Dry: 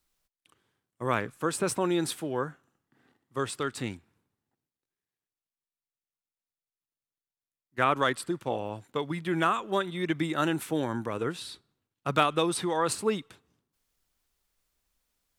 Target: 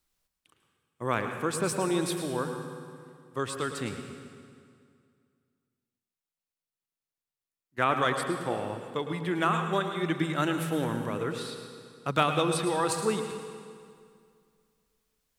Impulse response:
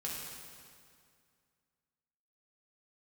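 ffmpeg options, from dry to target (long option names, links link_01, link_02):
-filter_complex "[0:a]asplit=2[link_01][link_02];[1:a]atrim=start_sample=2205,adelay=107[link_03];[link_02][link_03]afir=irnorm=-1:irlink=0,volume=-7dB[link_04];[link_01][link_04]amix=inputs=2:normalize=0,volume=-1dB"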